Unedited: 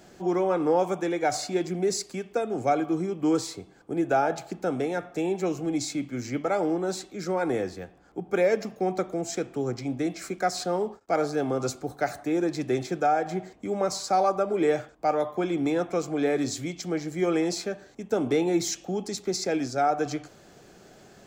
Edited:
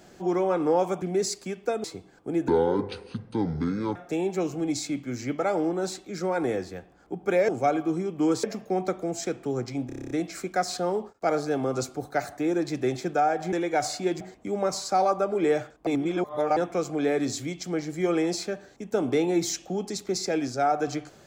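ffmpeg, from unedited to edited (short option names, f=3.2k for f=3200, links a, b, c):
-filter_complex "[0:a]asplit=19[a][b][c][d][e][f][g][h][i][j][k][l][m][n][o][p][q][r][s];[a]atrim=end=1.022[t];[b]atrim=start=1.698:end=2.522[u];[c]atrim=start=3.468:end=4.114[v];[d]atrim=start=4.11:end=5.01,asetpts=PTS-STARTPTS,asetrate=26901,aresample=44100[w];[e]atrim=start=5.006:end=8.542[x];[f]atrim=start=2.518:end=3.472[y];[g]atrim=start=8.538:end=10.002[z];[h]atrim=start=9.968:end=10.002[aa];[i]atrim=start=9.968:end=10.002[ab];[j]atrim=start=9.968:end=10.002[ac];[k]atrim=start=9.968:end=10.002[ad];[l]atrim=start=9.968:end=10.002[ae];[m]atrim=start=9.968:end=10.002[af];[n]atrim=start=9.968:end=10.002[ag];[o]atrim=start=9.968:end=13.392[ah];[p]atrim=start=1.018:end=1.702[ai];[q]atrim=start=13.388:end=15.052[aj];[r]atrim=start=15.048:end=15.752,asetpts=PTS-STARTPTS,areverse[ak];[s]atrim=start=15.748[al];[t][u]acrossfade=d=0.004:c1=hsin:c2=hsin[am];[am][v]acrossfade=d=0.004:c1=hsin:c2=hsin[an];[an][w]acrossfade=d=0.004:c1=hsin:c2=hsin[ao];[ao][x]acrossfade=d=0.004:c1=hsin:c2=hsin[ap];[ap][y]acrossfade=d=0.004:c1=hsin:c2=hsin[aq];[aq][z]acrossfade=d=0.004:c1=hsin:c2=hsin[ar];[ar][aa]acrossfade=d=0.004:c1=hsin:c2=hsin[as];[as][ab]acrossfade=d=0.004:c1=hsin:c2=hsin[at];[at][ac]acrossfade=d=0.004:c1=hsin:c2=hsin[au];[au][ad]acrossfade=d=0.004:c1=hsin:c2=hsin[av];[av][ae]acrossfade=d=0.004:c1=hsin:c2=hsin[aw];[aw][af]acrossfade=d=0.004:c1=hsin:c2=hsin[ax];[ax][ag]acrossfade=d=0.004:c1=hsin:c2=hsin[ay];[ay][ah]acrossfade=d=0.004:c1=hsin:c2=hsin[az];[az][ai]acrossfade=d=0.004:c1=hsin:c2=hsin[ba];[ba][aj]acrossfade=d=0.004:c1=hsin:c2=hsin[bb];[bb][ak]acrossfade=d=0.004:c1=hsin:c2=hsin[bc];[bc][al]acrossfade=d=0.004:c1=hsin:c2=hsin"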